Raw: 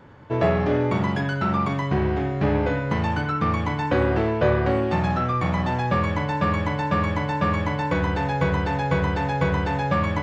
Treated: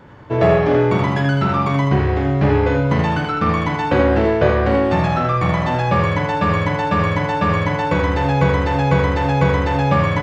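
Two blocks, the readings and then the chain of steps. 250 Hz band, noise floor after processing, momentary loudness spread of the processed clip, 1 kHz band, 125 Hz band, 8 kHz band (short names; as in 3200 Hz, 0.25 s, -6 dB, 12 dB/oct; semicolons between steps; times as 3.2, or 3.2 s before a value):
+5.0 dB, -22 dBFS, 3 LU, +5.5 dB, +6.5 dB, n/a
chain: early reflections 50 ms -10 dB, 79 ms -4.5 dB; gain +4.5 dB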